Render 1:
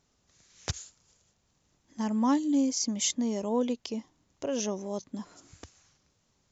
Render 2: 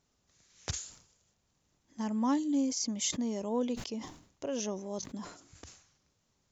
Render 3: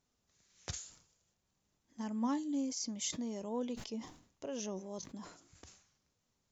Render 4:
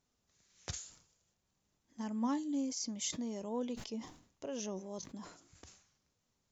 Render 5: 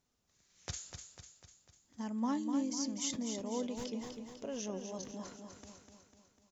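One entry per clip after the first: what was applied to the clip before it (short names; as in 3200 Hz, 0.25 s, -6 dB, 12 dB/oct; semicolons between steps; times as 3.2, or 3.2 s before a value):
sustainer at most 98 dB/s; gain -4 dB
flange 0.48 Hz, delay 3.9 ms, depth 2.5 ms, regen +82%; gain -1 dB
nothing audible
feedback echo 0.249 s, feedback 54%, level -7 dB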